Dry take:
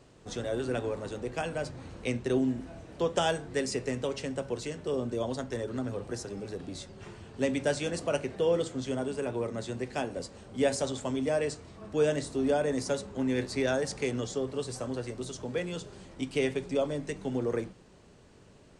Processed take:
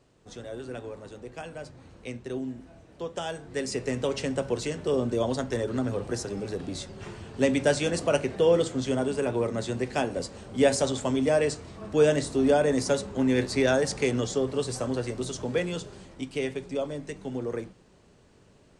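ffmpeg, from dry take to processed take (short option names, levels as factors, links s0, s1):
-af "volume=1.88,afade=t=in:st=3.29:d=0.93:silence=0.266073,afade=t=out:st=15.56:d=0.73:silence=0.446684"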